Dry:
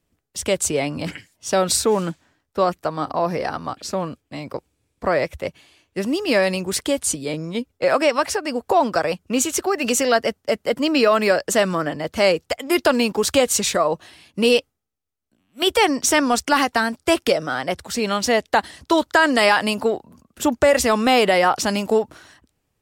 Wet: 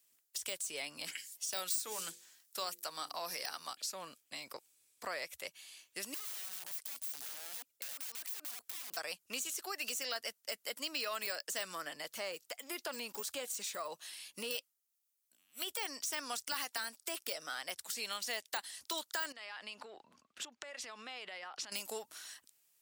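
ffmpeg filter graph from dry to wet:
-filter_complex "[0:a]asettb=1/sr,asplit=3[a][b][c];[a]atrim=end=1.154[d];[b]atrim=start=1.15:end=3.75,asetpts=PTS-STARTPTS,afade=t=in:d=0.004:c=qsin,afade=t=out:st=2.596:d=0.004:c=qsin,highshelf=f=3.2k:g=10,bandreject=f=50:t=h:w=6,bandreject=f=100:t=h:w=6,bandreject=f=150:t=h:w=6,bandreject=f=200:t=h:w=6,bandreject=f=250:t=h:w=6,bandreject=f=300:t=h:w=6,bandreject=f=350:t=h:w=6,bandreject=f=400:t=h:w=6,bandreject=f=450:t=h:w=6,bandreject=f=500:t=h:w=6[e];[c]atrim=start=3.746[f];[d][e]acrossfade=d=0.004:c1=hsin:c2=qsin[g];[g][f]acrossfade=d=0.004:c1=qsin:c2=hsin,asettb=1/sr,asplit=3[h][i][j];[h]atrim=end=6.144[k];[i]atrim=start=6.14:end=8.97,asetpts=PTS-STARTPTS,afade=t=in:d=0.004:c=qsin,afade=t=out:st=2.826:d=0.004:c=qsin,acompressor=threshold=-25dB:ratio=12:attack=3.2:release=140:knee=1:detection=peak,aeval=exprs='(mod(26.6*val(0)+1,2)-1)/26.6':c=same[l];[j]atrim=start=8.966[m];[k][l]acrossfade=d=0.004:c1=hsin:c2=qsin[n];[n][m]acrossfade=d=0.004:c1=qsin:c2=hsin,asettb=1/sr,asplit=3[o][p][q];[o]atrim=end=12.114[r];[p]atrim=start=12.11:end=14.51,asetpts=PTS-STARTPTS,afade=t=in:d=0.004:c=qsin,afade=t=out:st=2.396:d=0.004:c=qsin,deesser=1,bandreject=f=750:w=18[s];[q]atrim=start=14.506[t];[r][s]acrossfade=d=0.004:c1=hsin:c2=qsin[u];[u][t]acrossfade=d=0.004:c1=qsin:c2=hsin,asettb=1/sr,asplit=3[v][w][x];[v]atrim=end=19.324[y];[w]atrim=start=19.32:end=21.72,asetpts=PTS-STARTPTS,afade=t=in:d=0.004:c=qsin,afade=t=out:st=2.396:d=0.004:c=qsin,lowpass=3.2k,acompressor=threshold=-29dB:ratio=20:attack=3.2:release=140:knee=1:detection=peak[z];[x]atrim=start=21.716[aa];[y][z]acrossfade=d=0.004:c1=hsin:c2=qsin[ab];[ab][aa]acrossfade=d=0.004:c1=qsin:c2=hsin,deesser=0.6,aderivative,acompressor=threshold=-53dB:ratio=2,volume=7dB"

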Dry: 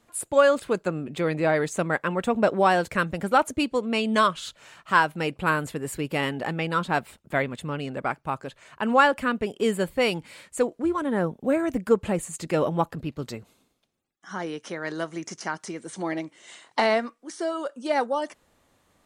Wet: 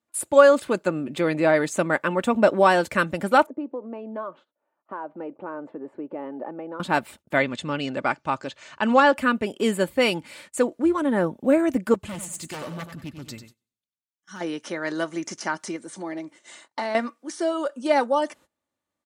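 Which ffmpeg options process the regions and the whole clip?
-filter_complex "[0:a]asettb=1/sr,asplit=3[a][b][c];[a]atrim=end=3.464[d];[b]atrim=start=3.46:end=6.8,asetpts=PTS-STARTPTS,afade=t=in:d=0.004:c=qsin,afade=t=out:st=3.336:d=0.004:c=qsin,acompressor=threshold=-32dB:ratio=2.5:attack=3.2:release=140:knee=1:detection=peak,asuperpass=centerf=510:order=4:qfactor=0.77[e];[c]atrim=start=6.796[f];[d][e]acrossfade=d=0.004:c1=hsin:c2=qsin[g];[g][f]acrossfade=d=0.004:c1=qsin:c2=hsin,asettb=1/sr,asplit=3[h][i][j];[h]atrim=end=7.374[k];[i]atrim=start=7.37:end=9.14,asetpts=PTS-STARTPTS,afade=t=in:d=0.004:c=qsin,afade=t=out:st=1.766:d=0.004:c=qsin,deesser=0.8,lowpass=f=6.5k:w=0.5412,lowpass=f=6.5k:w=1.3066,highshelf=f=3.8k:g=10.5[l];[j]atrim=start=9.136[m];[k][l]acrossfade=d=0.004:c1=hsin:c2=qsin[n];[n][m]acrossfade=d=0.004:c1=qsin:c2=hsin,asettb=1/sr,asplit=3[o][p][q];[o]atrim=end=11.944[r];[p]atrim=start=11.94:end=14.41,asetpts=PTS-STARTPTS,afade=t=in:d=0.004:c=qsin,afade=t=out:st=2.466:d=0.004:c=qsin,equalizer=f=630:w=0.45:g=-14,aeval=exprs='0.0316*(abs(mod(val(0)/0.0316+3,4)-2)-1)':c=same,aecho=1:1:95|190|285|380:0.355|0.121|0.041|0.0139,atrim=end_sample=108927[s];[q]atrim=start=14.406[t];[r][s]acrossfade=d=0.004:c1=hsin:c2=qsin[u];[u][t]acrossfade=d=0.004:c1=qsin:c2=hsin,asettb=1/sr,asplit=3[v][w][x];[v]atrim=end=15.764[y];[w]atrim=start=15.76:end=16.95,asetpts=PTS-STARTPTS,afade=t=in:d=0.004:c=qsin,afade=t=out:st=1.186:d=0.004:c=qsin,equalizer=f=2.9k:w=2:g=-4.5,acompressor=threshold=-44dB:ratio=1.5:attack=3.2:release=140:knee=1:detection=peak[z];[x]atrim=start=16.946[aa];[y][z]acrossfade=d=0.004:c1=hsin:c2=qsin[ab];[ab][aa]acrossfade=d=0.004:c1=qsin:c2=hsin,aecho=1:1:3.4:0.34,agate=range=-23dB:threshold=-50dB:ratio=16:detection=peak,highpass=91,volume=2.5dB"

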